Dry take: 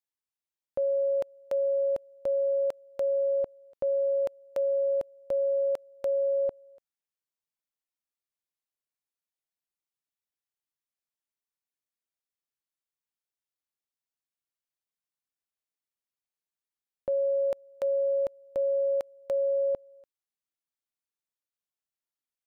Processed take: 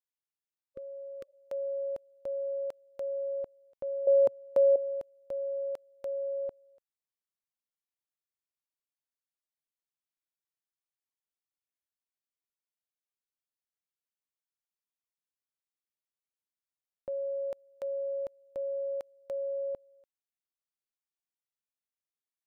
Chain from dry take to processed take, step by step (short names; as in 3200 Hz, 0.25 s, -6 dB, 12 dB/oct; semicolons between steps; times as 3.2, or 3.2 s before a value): 0.64–1.31 spectral repair 550–1100 Hz; 4.07–4.76 ten-band EQ 125 Hz +11 dB, 250 Hz +11 dB, 500 Hz +9 dB, 1000 Hz +8 dB; gain -7.5 dB